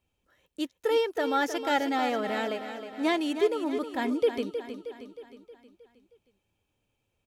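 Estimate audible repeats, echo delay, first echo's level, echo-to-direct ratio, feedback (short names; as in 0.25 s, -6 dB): 5, 0.314 s, -9.5 dB, -8.0 dB, 53%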